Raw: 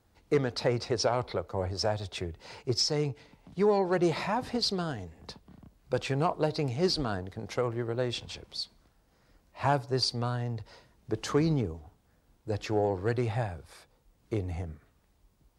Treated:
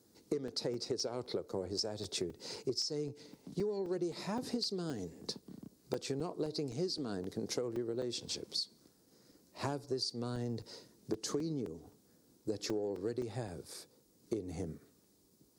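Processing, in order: HPF 240 Hz 12 dB/oct; band shelf 1400 Hz -14 dB 2.8 oct; compressor 16:1, threshold -41 dBFS, peak gain reduction 18.5 dB; crackling interface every 0.26 s, samples 128, zero, from 0.48; gain +8 dB

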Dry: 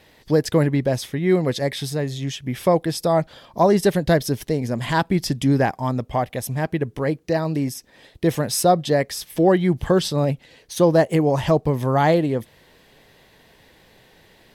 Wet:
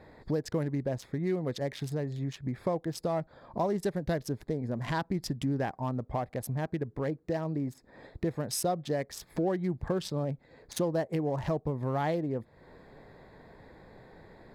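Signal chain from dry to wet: Wiener smoothing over 15 samples; compressor 2.5:1, threshold -38 dBFS, peak gain reduction 17.5 dB; gain +2.5 dB

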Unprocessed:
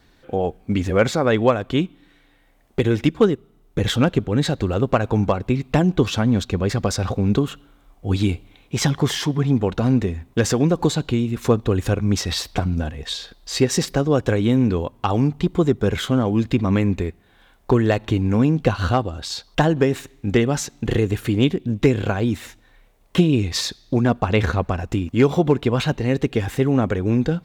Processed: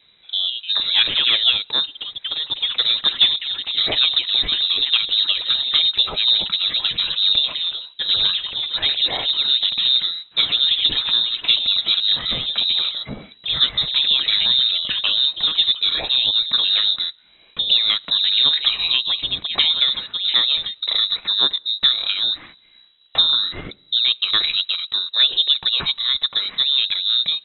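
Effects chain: echoes that change speed 0.223 s, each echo +5 st, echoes 3, each echo -6 dB; inverted band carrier 3900 Hz; gain -1 dB

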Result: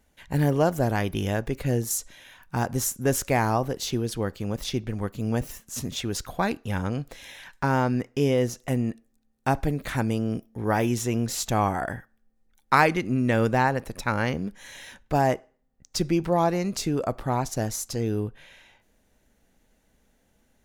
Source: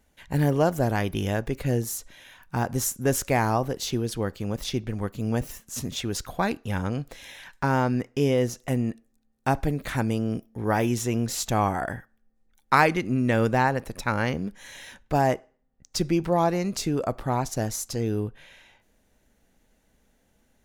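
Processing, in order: 1.9–2.66 dynamic EQ 7500 Hz, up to +7 dB, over -47 dBFS, Q 0.78

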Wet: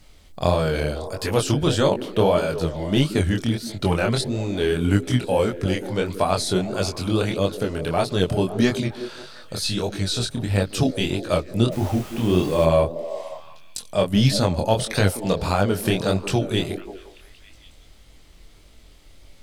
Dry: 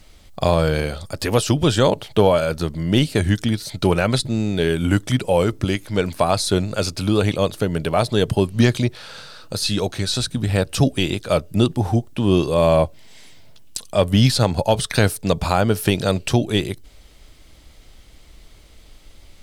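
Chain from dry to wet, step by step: delay with a stepping band-pass 0.179 s, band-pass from 300 Hz, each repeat 0.7 oct, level -8 dB; chorus 1.6 Hz, delay 20 ms, depth 7 ms; 11.71–12.64 added noise pink -40 dBFS

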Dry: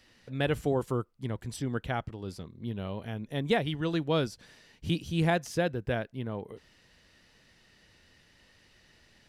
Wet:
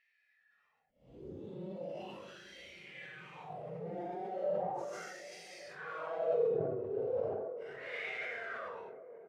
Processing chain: comb 1.5 ms, depth 77%; in parallel at -6 dB: fuzz box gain 41 dB, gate -47 dBFS; on the sum: wow and flutter 130 cents; wah 2.4 Hz 370–2200 Hz, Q 9.2; Paulstretch 6.4×, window 0.05 s, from 4.67; on a send: band-limited delay 0.387 s, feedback 85%, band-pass 410 Hz, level -16 dB; on the sum: sustainer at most 25 dB/s; gain -7 dB

